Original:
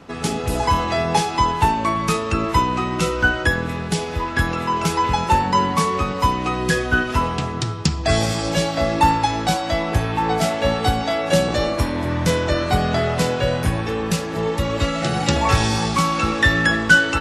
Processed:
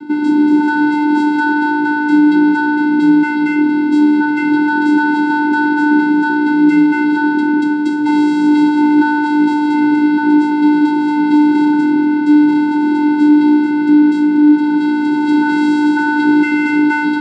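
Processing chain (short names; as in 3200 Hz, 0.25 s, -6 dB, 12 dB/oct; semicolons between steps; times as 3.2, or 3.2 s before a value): overdrive pedal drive 27 dB, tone 1800 Hz, clips at -2 dBFS; tone controls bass -13 dB, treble -3 dB; vocoder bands 8, square 298 Hz; fifteen-band EQ 160 Hz +11 dB, 400 Hz +5 dB, 1000 Hz -10 dB, 2500 Hz -10 dB, 6300 Hz -8 dB; AGC gain up to 4 dB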